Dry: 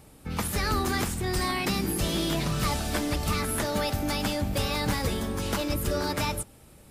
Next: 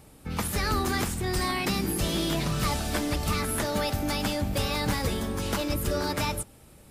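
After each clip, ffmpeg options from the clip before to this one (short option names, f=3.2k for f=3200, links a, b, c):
-af anull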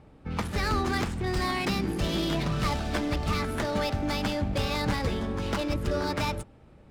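-af "adynamicsmooth=sensitivity=6:basefreq=2.4k"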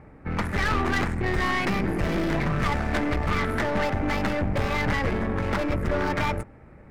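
-af "highshelf=f=2.6k:t=q:w=3:g=-8,aeval=exprs='(tanh(25.1*val(0)+0.55)-tanh(0.55))/25.1':c=same,volume=7.5dB"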